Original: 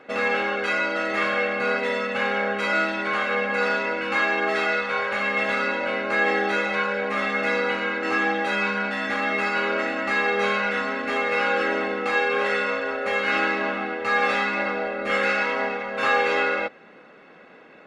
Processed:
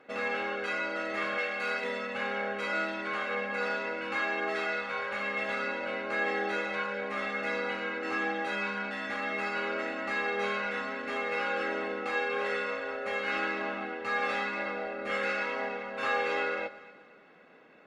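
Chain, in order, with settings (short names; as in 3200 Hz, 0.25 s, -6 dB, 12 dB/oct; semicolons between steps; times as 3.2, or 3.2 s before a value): 1.38–1.84 tilt +2.5 dB/oct; echo with dull and thin repeats by turns 0.12 s, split 840 Hz, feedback 61%, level -13.5 dB; gain -9 dB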